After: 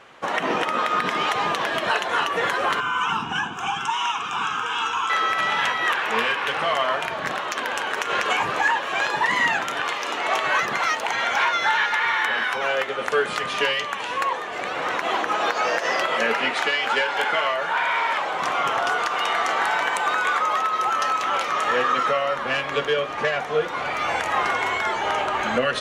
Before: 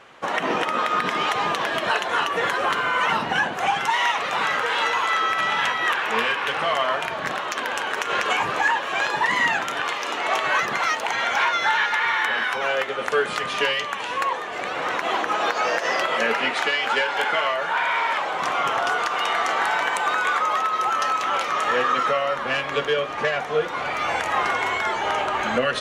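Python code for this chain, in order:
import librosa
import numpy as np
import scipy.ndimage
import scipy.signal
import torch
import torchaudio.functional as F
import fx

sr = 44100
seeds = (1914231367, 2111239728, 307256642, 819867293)

y = fx.fixed_phaser(x, sr, hz=2900.0, stages=8, at=(2.8, 5.1))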